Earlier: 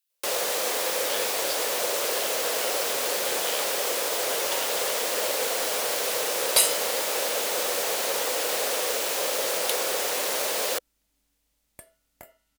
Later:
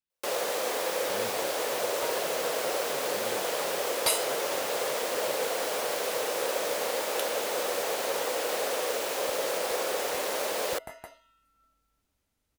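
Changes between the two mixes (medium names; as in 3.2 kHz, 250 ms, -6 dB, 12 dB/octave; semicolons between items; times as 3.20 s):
speech: add tilt EQ -3.5 dB/octave; second sound: entry -2.50 s; master: add treble shelf 2.2 kHz -8 dB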